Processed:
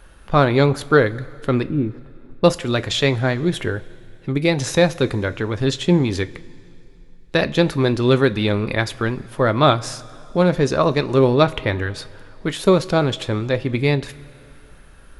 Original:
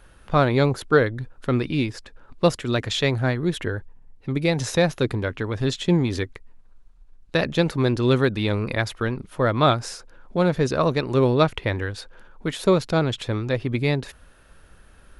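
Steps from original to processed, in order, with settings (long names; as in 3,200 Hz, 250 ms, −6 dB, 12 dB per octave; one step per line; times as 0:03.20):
0:01.63–0:02.44: Bessel low-pass filter 500 Hz, order 2
coupled-rooms reverb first 0.22 s, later 2.7 s, from −18 dB, DRR 11.5 dB
level +3.5 dB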